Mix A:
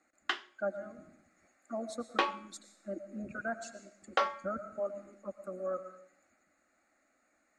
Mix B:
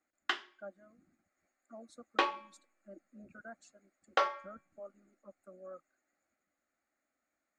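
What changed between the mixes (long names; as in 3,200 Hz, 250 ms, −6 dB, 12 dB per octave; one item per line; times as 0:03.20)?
speech −11.5 dB
reverb: off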